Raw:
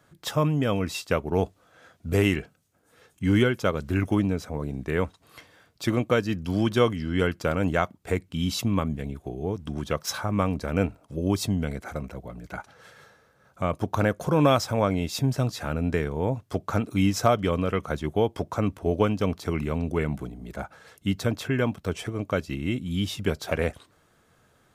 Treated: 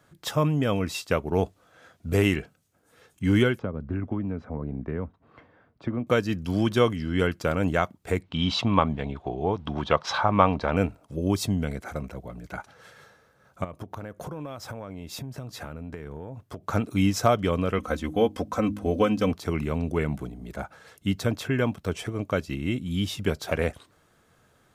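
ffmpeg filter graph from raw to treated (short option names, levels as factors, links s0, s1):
-filter_complex "[0:a]asettb=1/sr,asplit=3[s0][s1][s2];[s0]atrim=end=3.594[s3];[s1]atrim=start=3.59:end=6.07,asetpts=PTS-STARTPTS,afade=t=in:d=0.004:c=qsin,afade=t=out:st=2.476:d=0.004:c=qsin,lowpass=1400,equalizer=f=240:w=7.1:g=6.5,acrossover=split=250|1000[s4][s5][s6];[s4]acompressor=threshold=0.0355:ratio=4[s7];[s5]acompressor=threshold=0.0178:ratio=4[s8];[s6]acompressor=threshold=0.00447:ratio=4[s9];[s7][s8][s9]amix=inputs=3:normalize=0[s10];[s2]atrim=start=6.066[s11];[s3][s10]acrossfade=d=0.004:c1=hsin:c2=qsin[s12];[s12][s11]acrossfade=d=0.004:c1=qsin:c2=hsin,asettb=1/sr,asplit=3[s13][s14][s15];[s13]atrim=end=8.234[s16];[s14]atrim=start=8.23:end=10.77,asetpts=PTS-STARTPTS,afade=t=in:d=0.004:c=qsin,afade=t=out:st=2.536:d=0.004:c=qsin,lowpass=f=3700:t=q:w=1.9,equalizer=f=890:t=o:w=1.3:g=11.5[s17];[s15]atrim=start=10.766[s18];[s16][s17]acrossfade=d=0.004:c1=hsin:c2=qsin[s19];[s19][s18]acrossfade=d=0.004:c1=qsin:c2=hsin,asettb=1/sr,asplit=3[s20][s21][s22];[s20]atrim=end=13.644[s23];[s21]atrim=start=13.64:end=16.67,asetpts=PTS-STARTPTS,afade=t=in:d=0.004:c=qsin,afade=t=out:st=3.026:d=0.004:c=qsin,equalizer=f=5700:w=0.46:g=-5,acompressor=threshold=0.0251:ratio=12:attack=3.2:release=140:knee=1:detection=peak[s24];[s22]atrim=start=16.666[s25];[s23][s24]acrossfade=d=0.004:c1=hsin:c2=qsin[s26];[s26][s25]acrossfade=d=0.004:c1=qsin:c2=hsin,asettb=1/sr,asplit=3[s27][s28][s29];[s27]atrim=end=17.784[s30];[s28]atrim=start=17.78:end=19.32,asetpts=PTS-STARTPTS,afade=t=in:d=0.004:c=qsin,afade=t=out:st=1.536:d=0.004:c=qsin,bandreject=f=850:w=12,aecho=1:1:3.9:0.69,atrim=end_sample=67914,bandreject=f=51.41:t=h:w=4,bandreject=f=102.82:t=h:w=4,bandreject=f=154.23:t=h:w=4,bandreject=f=205.64:t=h:w=4,bandreject=f=257.05:t=h:w=4,bandreject=f=308.46:t=h:w=4[s31];[s29]atrim=start=19.316[s32];[s30][s31]acrossfade=d=0.004:c1=hsin:c2=qsin[s33];[s33][s32]acrossfade=d=0.004:c1=qsin:c2=hsin"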